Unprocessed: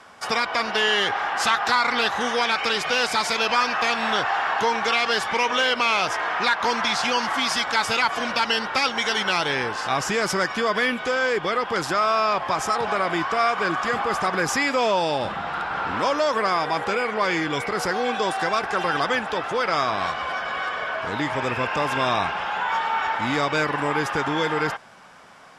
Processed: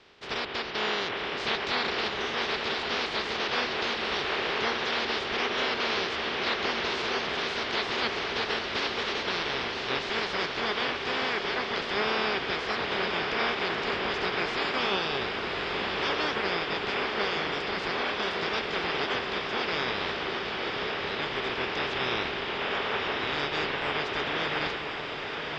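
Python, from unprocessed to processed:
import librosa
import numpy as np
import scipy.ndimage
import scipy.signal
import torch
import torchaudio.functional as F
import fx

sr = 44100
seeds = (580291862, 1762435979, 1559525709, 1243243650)

y = fx.spec_clip(x, sr, under_db=25)
y = scipy.signal.sosfilt(scipy.signal.butter(4, 4200.0, 'lowpass', fs=sr, output='sos'), y)
y = fx.peak_eq(y, sr, hz=400.0, db=10.0, octaves=0.39)
y = fx.echo_diffused(y, sr, ms=1092, feedback_pct=69, wet_db=-5.5)
y = y * 10.0 ** (-8.0 / 20.0)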